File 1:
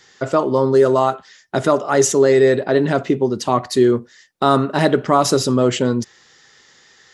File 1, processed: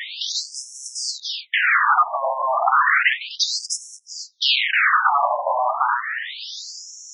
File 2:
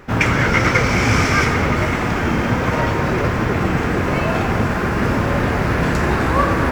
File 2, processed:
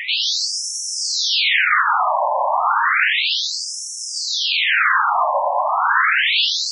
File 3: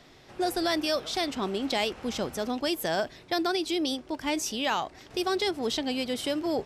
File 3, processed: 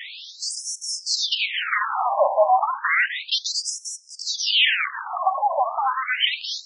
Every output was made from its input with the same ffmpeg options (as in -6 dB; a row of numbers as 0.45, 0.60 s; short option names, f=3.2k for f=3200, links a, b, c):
-filter_complex "[0:a]lowshelf=f=120:g=-11.5,asplit=2[a][b];[b]highpass=f=720:p=1,volume=36dB,asoftclip=type=tanh:threshold=0dB[c];[a][c]amix=inputs=2:normalize=0,lowpass=f=1.2k:p=1,volume=-6dB,acrossover=split=220|3600[d][e][f];[e]aeval=exprs='0.282*(abs(mod(val(0)/0.282+3,4)-2)-1)':c=same[g];[d][g][f]amix=inputs=3:normalize=0,afftfilt=real='re*between(b*sr/1024,760*pow(7600/760,0.5+0.5*sin(2*PI*0.32*pts/sr))/1.41,760*pow(7600/760,0.5+0.5*sin(2*PI*0.32*pts/sr))*1.41)':imag='im*between(b*sr/1024,760*pow(7600/760,0.5+0.5*sin(2*PI*0.32*pts/sr))/1.41,760*pow(7600/760,0.5+0.5*sin(2*PI*0.32*pts/sr))*1.41)':win_size=1024:overlap=0.75,volume=3.5dB"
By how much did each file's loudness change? -2.5, +0.5, +7.5 LU